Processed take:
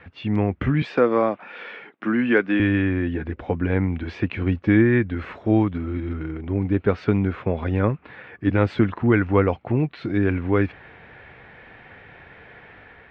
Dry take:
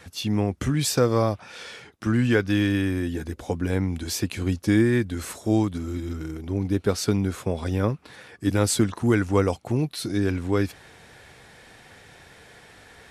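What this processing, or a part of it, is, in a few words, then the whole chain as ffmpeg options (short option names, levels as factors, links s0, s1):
action camera in a waterproof case: -filter_complex "[0:a]asettb=1/sr,asplit=3[s0][s1][s2];[s0]atrim=end=0.824[s3];[s1]atrim=start=0.82:end=2.6,asetpts=PTS-STARTPTS,afade=t=in:d=0.004:c=qsin,afade=t=out:st=1.776:d=0.004:c=qsin,highpass=f=200:w=0.5412,highpass=f=200:w=1.3066[s4];[s2]atrim=start=2.596[s5];[s3][s4]acrossfade=d=0.004:c1=hsin:c2=qsin[s6];[s6][s5]acrossfade=d=0.004:c1=qsin:c2=hsin,lowpass=f=2500:w=0.5412,lowpass=f=2500:w=1.3066,equalizer=f=2500:t=o:w=1.6:g=3.5,dynaudnorm=f=130:g=5:m=1.41" -ar 44100 -c:a aac -b:a 128k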